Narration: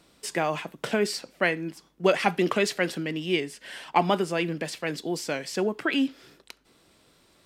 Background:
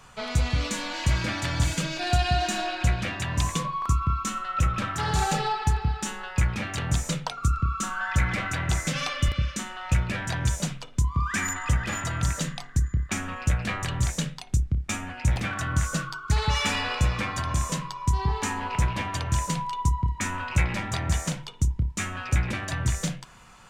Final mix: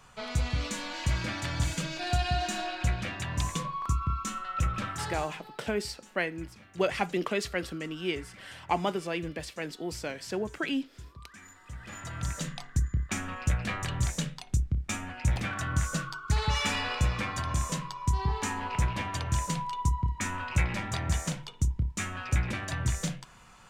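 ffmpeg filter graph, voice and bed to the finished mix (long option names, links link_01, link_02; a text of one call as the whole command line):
ffmpeg -i stem1.wav -i stem2.wav -filter_complex "[0:a]adelay=4750,volume=-6dB[link_01];[1:a]volume=15dB,afade=type=out:start_time=4.89:duration=0.43:silence=0.11885,afade=type=in:start_time=11.67:duration=1.01:silence=0.1[link_02];[link_01][link_02]amix=inputs=2:normalize=0" out.wav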